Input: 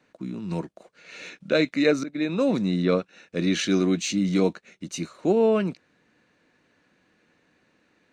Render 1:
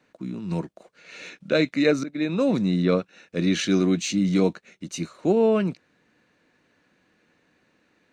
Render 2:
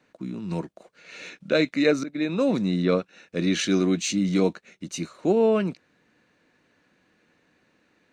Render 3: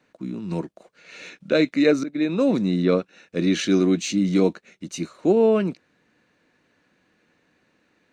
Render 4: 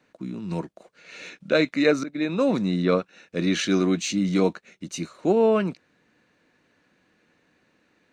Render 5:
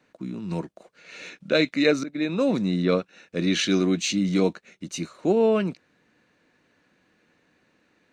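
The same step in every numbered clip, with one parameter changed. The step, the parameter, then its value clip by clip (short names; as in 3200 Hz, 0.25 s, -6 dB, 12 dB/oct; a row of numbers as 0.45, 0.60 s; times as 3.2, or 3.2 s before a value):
dynamic EQ, frequency: 120, 9100, 320, 1100, 3400 Hz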